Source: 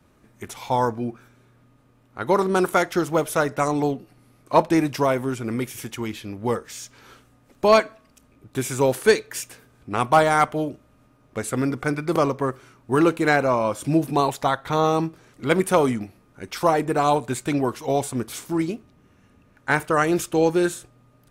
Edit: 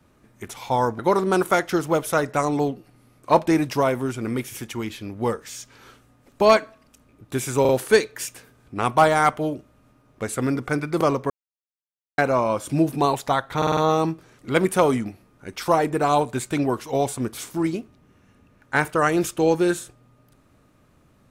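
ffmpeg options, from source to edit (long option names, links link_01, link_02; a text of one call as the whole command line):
ffmpeg -i in.wav -filter_complex "[0:a]asplit=10[link_01][link_02][link_03][link_04][link_05][link_06][link_07][link_08][link_09][link_10];[link_01]atrim=end=0.992[link_11];[link_02]atrim=start=2.218:end=8.882[link_12];[link_03]atrim=start=8.838:end=8.882[link_13];[link_04]atrim=start=8.838:end=12.45,asetpts=PTS-STARTPTS,afade=type=out:start_time=3.608:duration=0.004:curve=hsin[link_14];[link_05]atrim=start=12.45:end=13.33,asetpts=PTS-STARTPTS,volume=0[link_15];[link_06]atrim=start=13.33:end=14.772,asetpts=PTS-STARTPTS,afade=type=in:duration=0.004:curve=hsin[link_16];[link_07]atrim=start=14.718:end=14.772[link_17];[link_08]atrim=start=14.718:end=14.772[link_18];[link_09]atrim=start=14.718:end=14.772[link_19];[link_10]atrim=start=14.718[link_20];[link_11][link_12]acrossfade=duration=0.004:curve1=hsin:curve2=hsin[link_21];[link_21][link_13]acrossfade=duration=0.004:curve1=hsin:curve2=hsin[link_22];[link_14][link_15][link_16]concat=n=3:v=0:a=1[link_23];[link_22][link_23]acrossfade=duration=0.004:curve1=hsin:curve2=hsin[link_24];[link_24][link_17]acrossfade=duration=0.004:curve1=hsin:curve2=hsin[link_25];[link_25][link_18]acrossfade=duration=0.004:curve1=hsin:curve2=hsin[link_26];[link_26][link_19]acrossfade=duration=0.004:curve1=hsin:curve2=hsin[link_27];[link_27][link_20]acrossfade=duration=0.004:curve1=hsin:curve2=hsin" out.wav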